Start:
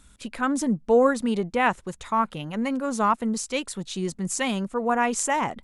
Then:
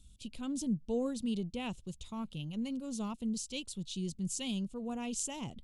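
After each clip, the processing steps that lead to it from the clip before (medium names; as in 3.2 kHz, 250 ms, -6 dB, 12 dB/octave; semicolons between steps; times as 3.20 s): FFT filter 120 Hz 0 dB, 1.8 kHz -29 dB, 2.9 kHz -5 dB, 4.2 kHz -5 dB, 9.4 kHz -8 dB; trim -2 dB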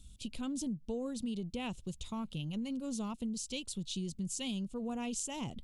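compression, threshold -39 dBFS, peak gain reduction 10.5 dB; trim +4 dB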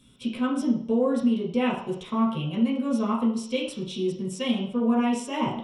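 reverberation RT60 0.55 s, pre-delay 3 ms, DRR -5 dB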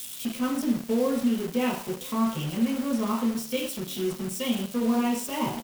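zero-crossing glitches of -29 dBFS; delay 1011 ms -23.5 dB; in parallel at -5.5 dB: bit crusher 5-bit; on the sum: trim -5.5 dB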